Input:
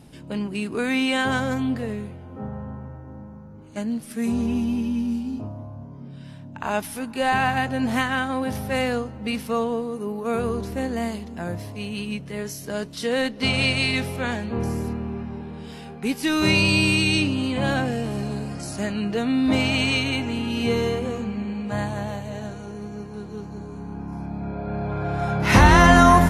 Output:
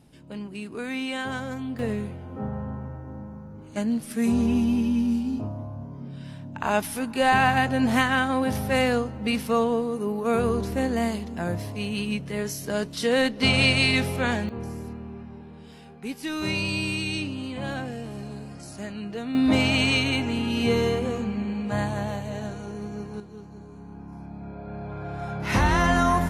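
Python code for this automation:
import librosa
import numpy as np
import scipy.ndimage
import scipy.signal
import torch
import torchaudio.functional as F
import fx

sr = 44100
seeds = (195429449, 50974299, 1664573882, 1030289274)

y = fx.gain(x, sr, db=fx.steps((0.0, -8.0), (1.79, 1.5), (14.49, -8.5), (19.35, 0.0), (23.2, -8.0)))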